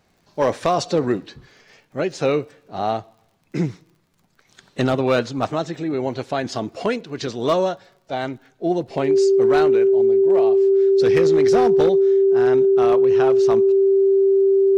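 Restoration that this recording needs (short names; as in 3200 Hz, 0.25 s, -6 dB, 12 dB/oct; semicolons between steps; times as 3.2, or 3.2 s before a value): clip repair -10 dBFS; de-click; notch 390 Hz, Q 30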